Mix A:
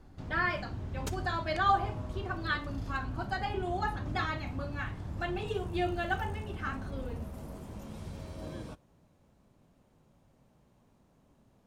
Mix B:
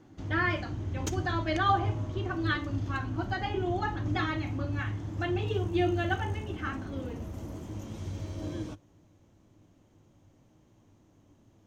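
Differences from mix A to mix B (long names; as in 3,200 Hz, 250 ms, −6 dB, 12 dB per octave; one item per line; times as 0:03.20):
speech: add band-pass filter 170–4,400 Hz
master: add thirty-one-band graphic EQ 100 Hz +12 dB, 315 Hz +12 dB, 2,000 Hz +3 dB, 3,150 Hz +5 dB, 6,300 Hz +10 dB, 10,000 Hz −8 dB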